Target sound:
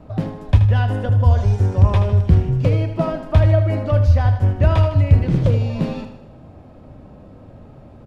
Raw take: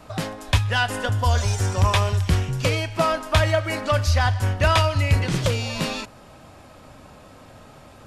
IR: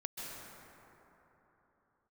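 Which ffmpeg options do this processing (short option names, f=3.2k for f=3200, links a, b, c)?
-af "firequalizer=gain_entry='entry(170,0);entry(1200,-15);entry(7400,-27)':delay=0.05:min_phase=1,aecho=1:1:78|156|234|312|390|468:0.316|0.161|0.0823|0.0419|0.0214|0.0109,volume=7dB"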